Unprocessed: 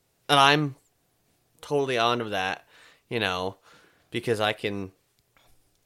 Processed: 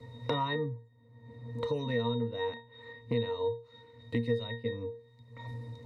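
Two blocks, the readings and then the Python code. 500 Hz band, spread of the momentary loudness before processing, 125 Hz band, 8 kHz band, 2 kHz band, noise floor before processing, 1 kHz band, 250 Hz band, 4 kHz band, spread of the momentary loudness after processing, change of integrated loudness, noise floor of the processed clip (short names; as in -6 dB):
-5.0 dB, 16 LU, -1.0 dB, under -25 dB, -14.0 dB, -70 dBFS, -13.5 dB, -4.5 dB, -14.0 dB, 18 LU, -9.5 dB, -60 dBFS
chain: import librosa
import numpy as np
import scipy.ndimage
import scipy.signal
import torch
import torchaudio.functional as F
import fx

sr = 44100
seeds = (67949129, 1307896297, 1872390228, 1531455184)

y = fx.octave_resonator(x, sr, note='A#', decay_s=0.28)
y = fx.band_squash(y, sr, depth_pct=100)
y = y * 10.0 ** (8.5 / 20.0)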